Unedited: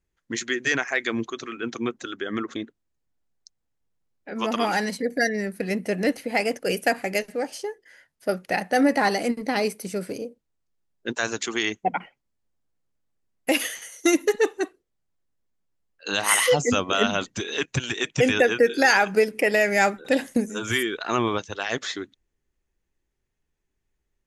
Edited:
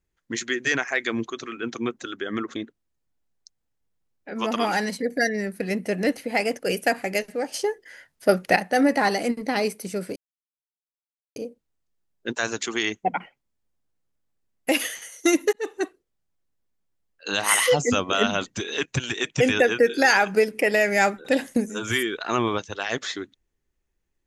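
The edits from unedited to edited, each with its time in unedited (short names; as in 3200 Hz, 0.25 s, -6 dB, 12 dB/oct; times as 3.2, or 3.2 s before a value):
7.54–8.56 gain +6.5 dB
10.16 insert silence 1.20 s
14.33–14.61 fade in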